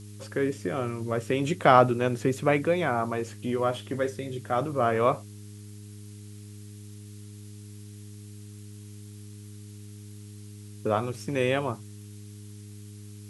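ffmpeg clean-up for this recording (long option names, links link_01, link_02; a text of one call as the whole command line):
ffmpeg -i in.wav -af "bandreject=frequency=103.4:width_type=h:width=4,bandreject=frequency=206.8:width_type=h:width=4,bandreject=frequency=310.2:width_type=h:width=4,bandreject=frequency=413.6:width_type=h:width=4,afftdn=noise_reduction=30:noise_floor=-44" out.wav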